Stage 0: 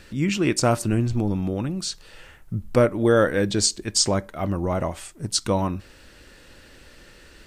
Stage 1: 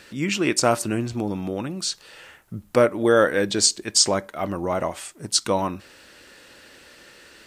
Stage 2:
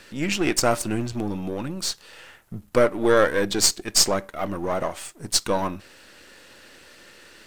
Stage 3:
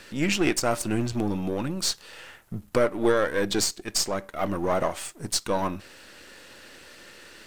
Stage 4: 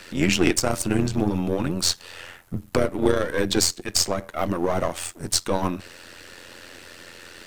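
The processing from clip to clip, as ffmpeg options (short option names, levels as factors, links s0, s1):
-af "highpass=f=370:p=1,volume=1.41"
-af "aeval=exprs='if(lt(val(0),0),0.447*val(0),val(0))':c=same,volume=1.26"
-af "alimiter=limit=0.251:level=0:latency=1:release=462,volume=1.12"
-filter_complex "[0:a]tremolo=f=87:d=0.75,acrossover=split=370|3000[s0][s1][s2];[s1]acompressor=threshold=0.0316:ratio=6[s3];[s0][s3][s2]amix=inputs=3:normalize=0,volume=2.37"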